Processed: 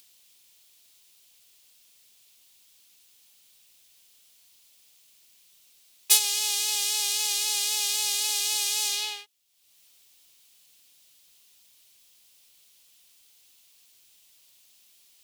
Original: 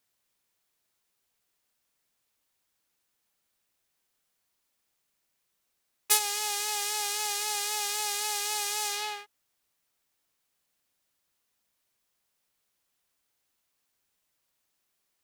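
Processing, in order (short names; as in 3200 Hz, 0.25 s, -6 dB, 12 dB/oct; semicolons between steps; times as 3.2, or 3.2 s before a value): resonant high shelf 2200 Hz +10 dB, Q 1.5; upward compressor, threshold -40 dBFS; gain -5.5 dB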